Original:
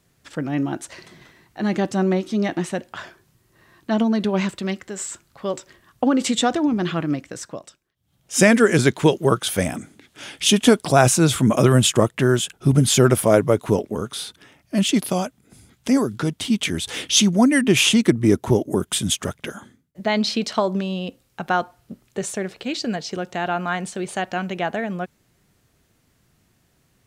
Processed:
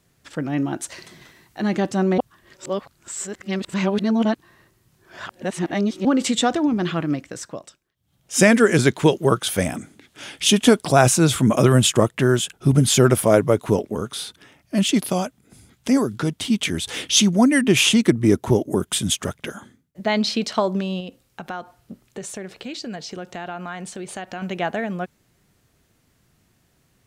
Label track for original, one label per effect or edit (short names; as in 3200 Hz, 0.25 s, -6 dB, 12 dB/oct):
0.800000	1.620000	high shelf 3900 Hz +6.5 dB
2.180000	6.050000	reverse
21.000000	24.420000	compressor 2.5:1, threshold -31 dBFS